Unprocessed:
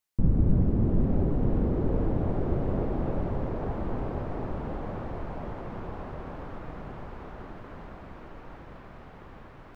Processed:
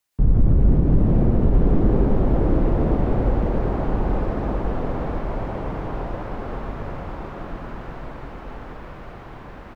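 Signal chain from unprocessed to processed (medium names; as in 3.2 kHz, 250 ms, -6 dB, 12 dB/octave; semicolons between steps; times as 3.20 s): frequency shift -54 Hz; loudspeakers at several distances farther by 40 m -1 dB, 70 m -10 dB; loudness maximiser +13 dB; trim -6.5 dB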